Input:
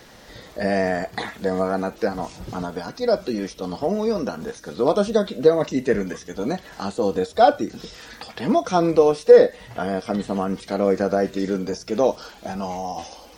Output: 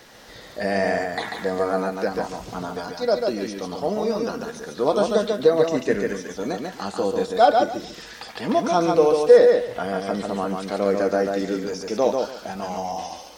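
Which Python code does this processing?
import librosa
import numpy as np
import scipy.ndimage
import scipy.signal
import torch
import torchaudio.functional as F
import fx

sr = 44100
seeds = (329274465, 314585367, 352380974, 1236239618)

y = fx.low_shelf(x, sr, hz=290.0, db=-6.5)
y = fx.echo_feedback(y, sr, ms=142, feedback_pct=21, wet_db=-4)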